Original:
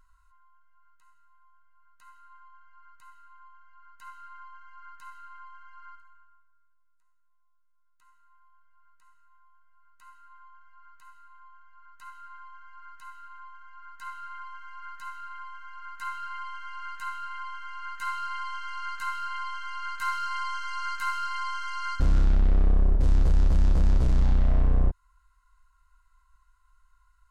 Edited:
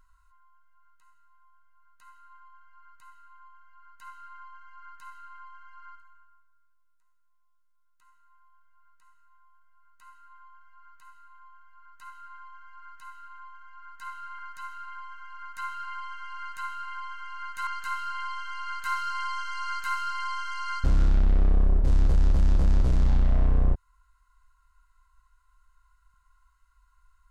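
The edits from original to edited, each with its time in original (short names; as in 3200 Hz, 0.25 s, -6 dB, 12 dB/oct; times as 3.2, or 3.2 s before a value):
14.39–14.82 cut
18.1–18.83 cut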